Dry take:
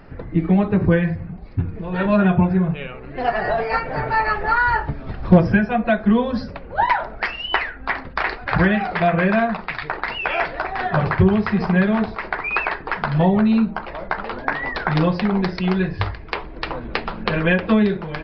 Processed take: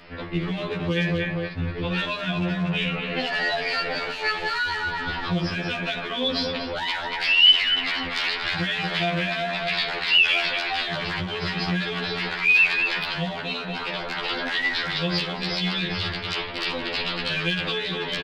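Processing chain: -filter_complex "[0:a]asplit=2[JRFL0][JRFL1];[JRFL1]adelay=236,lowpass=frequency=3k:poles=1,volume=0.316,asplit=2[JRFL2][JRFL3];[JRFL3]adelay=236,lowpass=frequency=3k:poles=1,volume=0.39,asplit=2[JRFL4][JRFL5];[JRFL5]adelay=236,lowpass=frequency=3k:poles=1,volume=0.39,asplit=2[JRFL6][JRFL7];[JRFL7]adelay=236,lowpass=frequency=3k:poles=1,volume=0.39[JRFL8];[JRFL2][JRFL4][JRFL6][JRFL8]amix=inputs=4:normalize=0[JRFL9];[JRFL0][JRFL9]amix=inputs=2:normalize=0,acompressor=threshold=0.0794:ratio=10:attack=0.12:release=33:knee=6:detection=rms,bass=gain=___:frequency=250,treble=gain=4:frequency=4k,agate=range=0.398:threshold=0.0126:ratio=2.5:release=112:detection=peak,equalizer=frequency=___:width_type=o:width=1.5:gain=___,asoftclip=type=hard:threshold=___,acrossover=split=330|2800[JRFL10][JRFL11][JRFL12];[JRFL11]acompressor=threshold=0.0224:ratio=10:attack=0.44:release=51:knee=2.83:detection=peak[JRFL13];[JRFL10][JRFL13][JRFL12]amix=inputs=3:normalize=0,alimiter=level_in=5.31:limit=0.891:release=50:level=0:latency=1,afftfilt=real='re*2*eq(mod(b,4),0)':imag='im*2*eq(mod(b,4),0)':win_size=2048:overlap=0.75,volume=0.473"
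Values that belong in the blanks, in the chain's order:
-10, 3.3k, 15, 0.398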